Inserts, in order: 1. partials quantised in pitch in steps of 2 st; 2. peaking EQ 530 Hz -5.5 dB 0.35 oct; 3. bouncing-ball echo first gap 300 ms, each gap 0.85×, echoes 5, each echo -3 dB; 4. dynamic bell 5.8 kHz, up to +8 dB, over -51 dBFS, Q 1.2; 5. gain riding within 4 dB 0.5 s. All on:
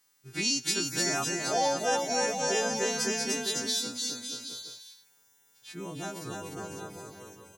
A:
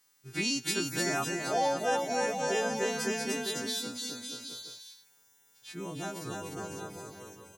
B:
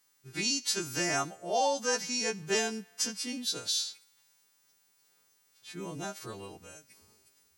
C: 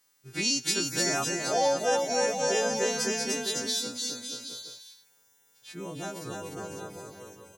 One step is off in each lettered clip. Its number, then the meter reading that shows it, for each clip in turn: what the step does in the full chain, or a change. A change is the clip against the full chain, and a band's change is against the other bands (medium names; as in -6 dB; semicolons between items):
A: 4, 8 kHz band -5.5 dB; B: 3, loudness change -2.0 LU; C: 2, 500 Hz band +2.5 dB